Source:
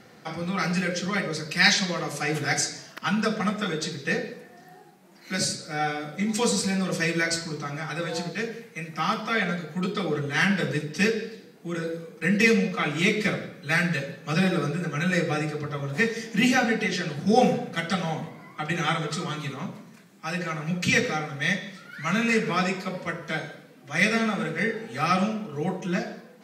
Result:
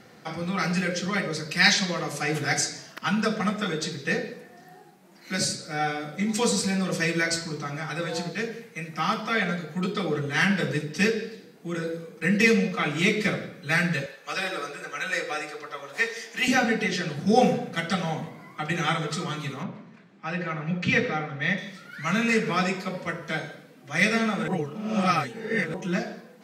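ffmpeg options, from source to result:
ffmpeg -i in.wav -filter_complex "[0:a]asettb=1/sr,asplit=3[link_01][link_02][link_03];[link_01]atrim=end=14.064[link_04];[link_02]atrim=start=14.06:end=16.48,asetpts=PTS-STARTPTS,afade=type=in:duration=0.004:curve=qsin,afade=type=out:start_time=2.416:duration=0.004:curve=qsin,highpass=600[link_05];[link_03]atrim=start=16.476[link_06];[link_04][link_05]acrossfade=duration=0.004:curve1=hsin:curve2=qsin[link_07];[link_07][link_06]acrossfade=duration=0.004:curve1=qsin:curve2=hsin,asettb=1/sr,asplit=3[link_08][link_09][link_10];[link_08]atrim=end=19.634[link_11];[link_09]atrim=start=19.63:end=21.58,asetpts=PTS-STARTPTS,afade=type=in:duration=0.004:curve=qsin,afade=type=out:start_time=1.946:duration=0.004:curve=qsin,lowpass=3100[link_12];[link_10]atrim=start=21.576[link_13];[link_11][link_12]acrossfade=duration=0.004:curve1=hsin:curve2=qsin[link_14];[link_14][link_13]acrossfade=duration=0.004:curve1=qsin:curve2=hsin,asplit=3[link_15][link_16][link_17];[link_15]atrim=end=24.482[link_18];[link_16]atrim=start=24.478:end=25.742,asetpts=PTS-STARTPTS,areverse[link_19];[link_17]atrim=start=25.738[link_20];[link_18][link_19]acrossfade=duration=0.004:curve1=hsin:curve2=hsin[link_21];[link_21][link_20]acrossfade=duration=0.004:curve1=hsin:curve2=hsin" out.wav

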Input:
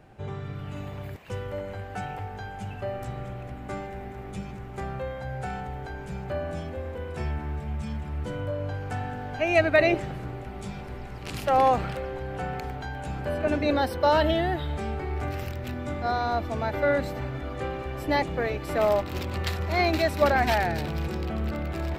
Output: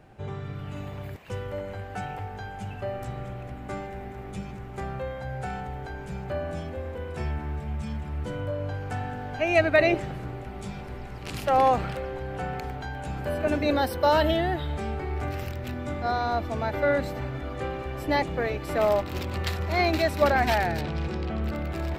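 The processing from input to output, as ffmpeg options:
ffmpeg -i in.wav -filter_complex "[0:a]asettb=1/sr,asplit=3[link_01][link_02][link_03];[link_01]atrim=end=13.174[link_04];[link_02]atrim=start=13.17:end=14.37,asetpts=PTS-STARTPTS,afade=type=in:duration=0.004:curve=qsin,afade=type=out:start_time=1.196:duration=0.004:curve=qsin,highshelf=frequency=11000:gain=11[link_05];[link_03]atrim=start=14.366[link_06];[link_04][link_05]acrossfade=duration=0.004:curve1=hsin:curve2=qsin[link_07];[link_07][link_06]acrossfade=duration=0.004:curve1=qsin:curve2=hsin,asettb=1/sr,asplit=3[link_08][link_09][link_10];[link_08]atrim=end=20.814[link_11];[link_09]atrim=start=20.81:end=21.44,asetpts=PTS-STARTPTS,afade=type=in:duration=0.004:curve=qsin,afade=type=out:start_time=0.626:duration=0.004:curve=qsin,lowpass=6000[link_12];[link_10]atrim=start=21.436[link_13];[link_11][link_12]acrossfade=duration=0.004:curve1=hsin:curve2=qsin[link_14];[link_14][link_13]acrossfade=duration=0.004:curve1=qsin:curve2=hsin" out.wav

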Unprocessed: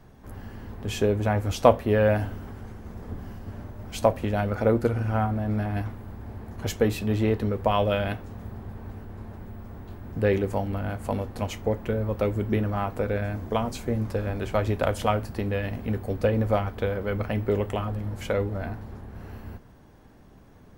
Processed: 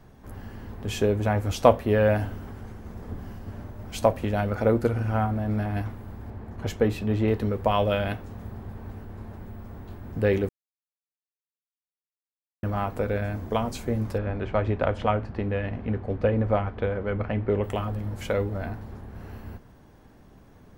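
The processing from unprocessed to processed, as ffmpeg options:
ffmpeg -i in.wav -filter_complex "[0:a]asettb=1/sr,asplit=3[link_01][link_02][link_03];[link_01]atrim=end=6.304[link_04];[link_02]atrim=start=6.3:end=7.28,asetpts=PTS-STARTPTS,afade=type=in:duration=0.004:curve=qsin,afade=type=out:start_time=0.976:duration=0.004:curve=qsin,highshelf=frequency=4200:gain=-9.5[link_05];[link_03]atrim=start=7.276[link_06];[link_04][link_05]acrossfade=duration=0.004:curve1=hsin:curve2=qsin[link_07];[link_07][link_06]acrossfade=duration=0.004:curve1=qsin:curve2=hsin,asettb=1/sr,asplit=3[link_08][link_09][link_10];[link_08]atrim=end=14.184[link_11];[link_09]atrim=start=14.18:end=17.64,asetpts=PTS-STARTPTS,afade=type=in:duration=0.004:curve=qsin,afade=type=out:start_time=3.456:duration=0.004:curve=qsin,lowpass=2700[link_12];[link_10]atrim=start=17.636[link_13];[link_11][link_12]acrossfade=duration=0.004:curve1=hsin:curve2=qsin[link_14];[link_14][link_13]acrossfade=duration=0.004:curve1=qsin:curve2=hsin,asplit=3[link_15][link_16][link_17];[link_15]atrim=end=10.49,asetpts=PTS-STARTPTS,afade=type=out:start_time=10.486:duration=0.004:curve=hsin[link_18];[link_16]atrim=start=10.49:end=12.63,asetpts=PTS-STARTPTS,volume=0[link_19];[link_17]atrim=start=12.63,asetpts=PTS-STARTPTS,afade=type=in:duration=0.004:curve=hsin[link_20];[link_18][link_19][link_20]concat=n=3:v=0:a=1" out.wav

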